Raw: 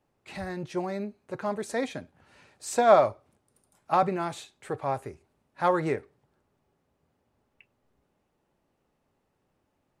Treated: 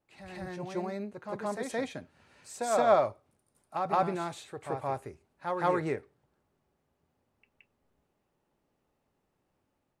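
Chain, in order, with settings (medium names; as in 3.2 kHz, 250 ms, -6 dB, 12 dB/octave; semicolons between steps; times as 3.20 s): level rider gain up to 4.5 dB; on a send: reverse echo 171 ms -5.5 dB; on the sum: trim -8.5 dB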